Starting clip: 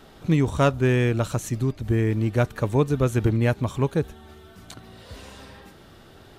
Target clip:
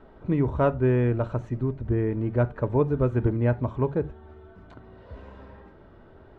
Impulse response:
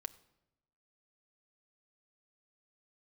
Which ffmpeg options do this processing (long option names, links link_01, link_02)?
-filter_complex "[0:a]lowpass=1300[link_01];[1:a]atrim=start_sample=2205,afade=type=out:start_time=0.22:duration=0.01,atrim=end_sample=10143,asetrate=79380,aresample=44100[link_02];[link_01][link_02]afir=irnorm=-1:irlink=0,volume=7dB"